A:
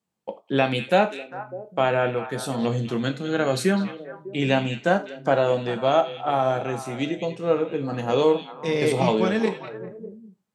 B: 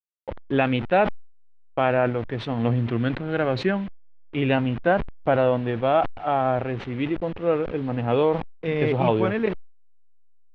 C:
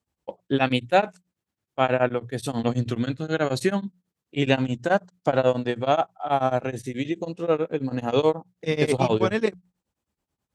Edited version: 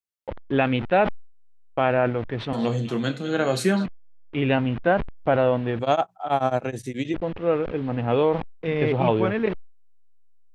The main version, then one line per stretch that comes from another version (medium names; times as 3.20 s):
B
2.53–3.86 s: from A
5.79–7.14 s: from C